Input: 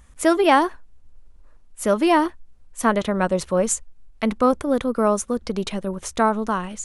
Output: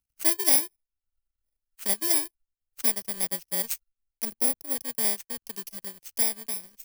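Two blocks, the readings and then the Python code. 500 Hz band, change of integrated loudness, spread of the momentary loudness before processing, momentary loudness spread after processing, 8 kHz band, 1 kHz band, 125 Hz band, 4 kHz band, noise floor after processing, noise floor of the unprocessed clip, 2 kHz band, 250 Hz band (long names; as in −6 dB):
−20.0 dB, −3.5 dB, 10 LU, 14 LU, +2.5 dB, −21.0 dB, below −15 dB, −0.5 dB, below −85 dBFS, −50 dBFS, −11.5 dB, −19.0 dB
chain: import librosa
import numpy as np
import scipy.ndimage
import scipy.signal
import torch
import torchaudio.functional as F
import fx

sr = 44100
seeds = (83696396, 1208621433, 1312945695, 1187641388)

y = fx.bit_reversed(x, sr, seeds[0], block=32)
y = fx.spec_box(y, sr, start_s=4.24, length_s=0.52, low_hz=860.0, high_hz=8500.0, gain_db=-6)
y = fx.power_curve(y, sr, exponent=2.0)
y = fx.high_shelf(y, sr, hz=2200.0, db=12.0)
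y = fx.band_squash(y, sr, depth_pct=40)
y = y * librosa.db_to_amplitude(-8.0)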